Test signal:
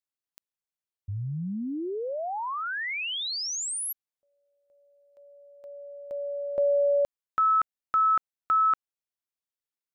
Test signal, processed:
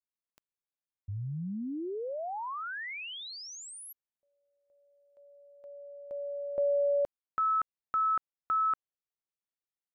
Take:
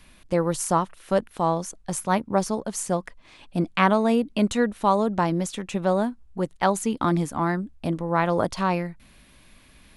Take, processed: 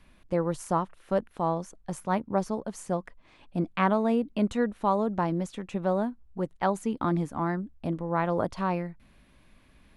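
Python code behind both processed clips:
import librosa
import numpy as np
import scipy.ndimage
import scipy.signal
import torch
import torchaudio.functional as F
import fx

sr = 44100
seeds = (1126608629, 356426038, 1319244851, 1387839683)

y = fx.high_shelf(x, sr, hz=2900.0, db=-11.0)
y = y * 10.0 ** (-4.0 / 20.0)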